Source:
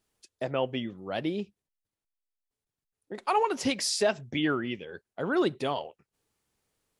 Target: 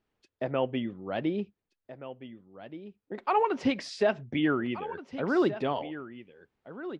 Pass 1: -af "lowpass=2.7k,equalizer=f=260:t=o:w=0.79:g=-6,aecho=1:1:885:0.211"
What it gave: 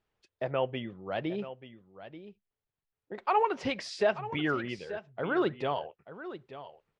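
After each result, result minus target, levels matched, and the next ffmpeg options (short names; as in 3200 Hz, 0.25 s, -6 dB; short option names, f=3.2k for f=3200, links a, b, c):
echo 0.591 s early; 250 Hz band -3.5 dB
-af "lowpass=2.7k,equalizer=f=260:t=o:w=0.79:g=-6,aecho=1:1:1476:0.211"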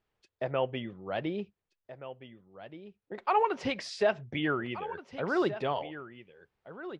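250 Hz band -4.0 dB
-af "lowpass=2.7k,equalizer=f=260:t=o:w=0.79:g=2.5,aecho=1:1:1476:0.211"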